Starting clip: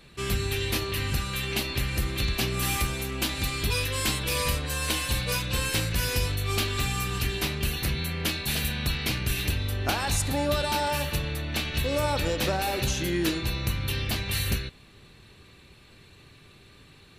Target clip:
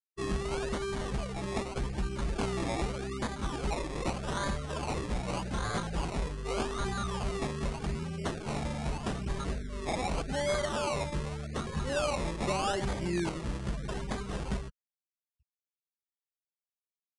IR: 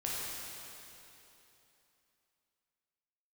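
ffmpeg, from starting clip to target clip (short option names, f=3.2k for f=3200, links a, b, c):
-af "afftfilt=real='re*gte(hypot(re,im),0.0355)':imag='im*gte(hypot(re,im),0.0355)':win_size=1024:overlap=0.75,aecho=1:1:5:0.87,acrusher=samples=23:mix=1:aa=0.000001:lfo=1:lforange=13.8:lforate=0.83,aeval=exprs='0.126*(abs(mod(val(0)/0.126+3,4)-2)-1)':c=same,aresample=22050,aresample=44100,volume=-6dB"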